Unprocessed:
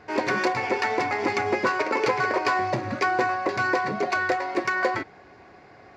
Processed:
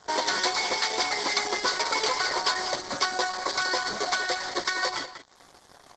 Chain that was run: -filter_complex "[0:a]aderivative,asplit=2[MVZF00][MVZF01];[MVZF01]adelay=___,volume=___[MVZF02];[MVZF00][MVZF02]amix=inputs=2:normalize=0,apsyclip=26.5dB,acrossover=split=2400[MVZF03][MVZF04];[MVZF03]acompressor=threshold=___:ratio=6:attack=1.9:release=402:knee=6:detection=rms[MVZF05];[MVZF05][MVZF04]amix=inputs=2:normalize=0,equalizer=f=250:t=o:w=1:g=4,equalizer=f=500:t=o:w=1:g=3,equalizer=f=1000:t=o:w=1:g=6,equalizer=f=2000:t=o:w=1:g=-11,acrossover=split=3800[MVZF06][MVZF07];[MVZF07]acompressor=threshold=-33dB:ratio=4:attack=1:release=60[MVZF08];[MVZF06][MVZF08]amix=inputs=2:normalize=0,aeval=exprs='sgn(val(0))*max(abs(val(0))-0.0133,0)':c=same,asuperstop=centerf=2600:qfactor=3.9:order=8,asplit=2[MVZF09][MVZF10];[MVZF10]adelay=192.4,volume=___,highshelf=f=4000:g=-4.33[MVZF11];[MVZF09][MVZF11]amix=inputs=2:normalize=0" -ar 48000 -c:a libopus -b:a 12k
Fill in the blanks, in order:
14, -6.5dB, -24dB, -10dB